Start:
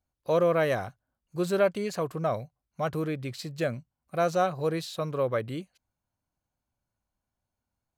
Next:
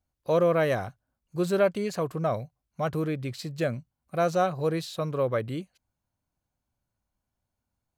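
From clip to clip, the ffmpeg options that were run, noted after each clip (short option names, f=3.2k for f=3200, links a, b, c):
-af "lowshelf=f=350:g=3"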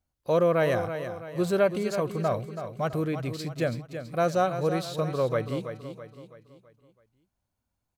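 -af "aecho=1:1:329|658|987|1316|1645:0.335|0.147|0.0648|0.0285|0.0126"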